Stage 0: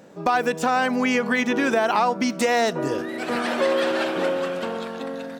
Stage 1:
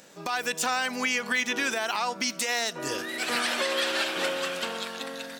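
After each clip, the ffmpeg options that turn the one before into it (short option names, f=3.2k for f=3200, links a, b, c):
-af "tiltshelf=f=1.5k:g=-10,alimiter=limit=-15.5dB:level=0:latency=1:release=236"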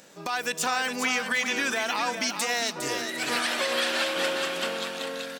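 -af "aecho=1:1:407|755:0.447|0.141"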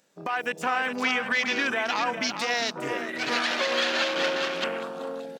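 -af "afwtdn=0.0224,volume=1.5dB"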